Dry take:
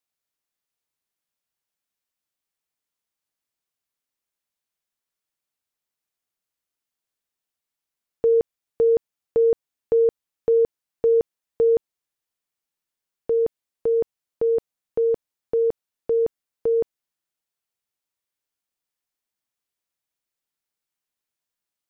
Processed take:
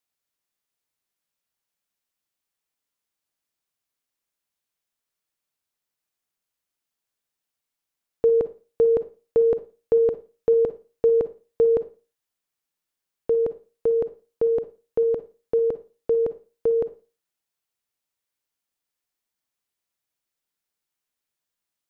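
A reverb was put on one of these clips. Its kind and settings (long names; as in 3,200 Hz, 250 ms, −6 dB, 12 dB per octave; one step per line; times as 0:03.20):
four-comb reverb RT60 0.33 s, DRR 12.5 dB
level +1 dB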